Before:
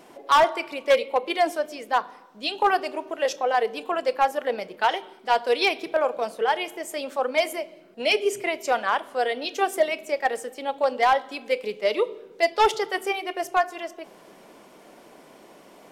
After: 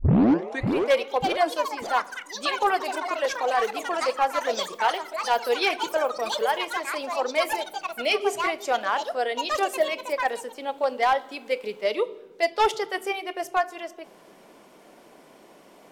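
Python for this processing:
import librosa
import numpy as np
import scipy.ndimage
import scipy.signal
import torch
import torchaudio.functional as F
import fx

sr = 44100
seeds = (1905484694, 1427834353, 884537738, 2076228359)

y = fx.tape_start_head(x, sr, length_s=0.73)
y = fx.echo_pitch(y, sr, ms=602, semitones=6, count=3, db_per_echo=-6.0)
y = y * 10.0 ** (-2.0 / 20.0)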